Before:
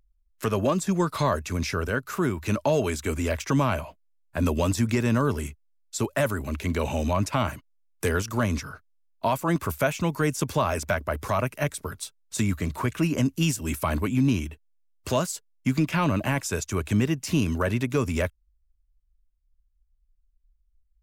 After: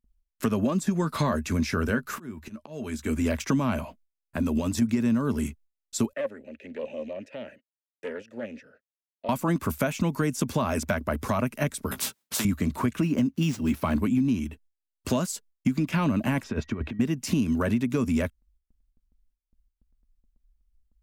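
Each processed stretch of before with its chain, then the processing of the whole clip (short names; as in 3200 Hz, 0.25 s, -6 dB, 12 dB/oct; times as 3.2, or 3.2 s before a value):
0.84–3.26 bell 1700 Hz +3.5 dB 0.33 oct + auto swell 0.782 s + doubler 13 ms -11 dB
3.81–4.82 compressor 16:1, threshold -25 dBFS + short-mantissa float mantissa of 6-bit
6.13–9.29 vowel filter e + Doppler distortion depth 0.15 ms
11.91–12.45 HPF 97 Hz + doubler 15 ms -6 dB + spectral compressor 4:1
13.01–13.96 median filter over 5 samples + HPF 56 Hz
16.42–16.99 negative-ratio compressor -30 dBFS, ratio -0.5 + whine 1900 Hz -57 dBFS + air absorption 330 m
whole clip: gate with hold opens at -59 dBFS; bell 230 Hz +12 dB 0.6 oct; compressor, threshold -21 dBFS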